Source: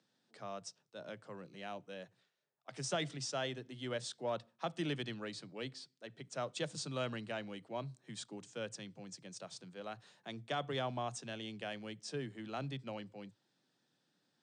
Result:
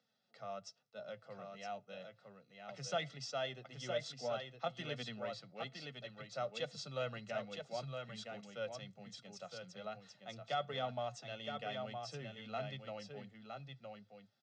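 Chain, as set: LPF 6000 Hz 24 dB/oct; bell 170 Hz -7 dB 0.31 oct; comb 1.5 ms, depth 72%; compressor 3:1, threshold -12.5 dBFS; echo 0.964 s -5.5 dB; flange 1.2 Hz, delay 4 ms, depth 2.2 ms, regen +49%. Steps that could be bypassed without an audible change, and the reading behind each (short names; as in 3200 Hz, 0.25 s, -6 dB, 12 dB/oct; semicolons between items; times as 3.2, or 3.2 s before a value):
compressor, threshold -12.5 dBFS: input peak -22.0 dBFS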